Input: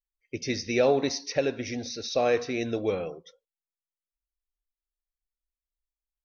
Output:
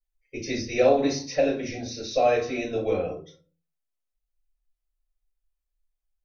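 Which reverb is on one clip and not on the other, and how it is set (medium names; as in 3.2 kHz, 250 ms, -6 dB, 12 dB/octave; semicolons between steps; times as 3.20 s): simulated room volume 140 m³, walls furnished, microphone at 5.3 m; trim -10 dB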